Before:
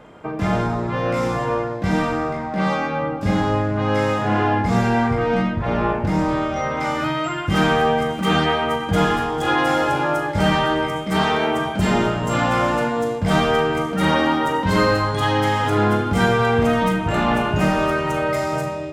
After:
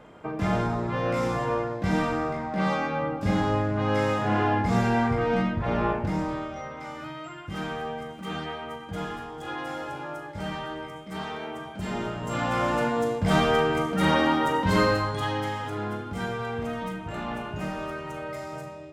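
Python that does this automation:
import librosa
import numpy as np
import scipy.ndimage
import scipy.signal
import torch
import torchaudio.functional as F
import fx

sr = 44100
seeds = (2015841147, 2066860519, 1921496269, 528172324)

y = fx.gain(x, sr, db=fx.line((5.9, -5.0), (6.79, -15.5), (11.66, -15.5), (12.88, -4.0), (14.77, -4.0), (15.78, -14.0)))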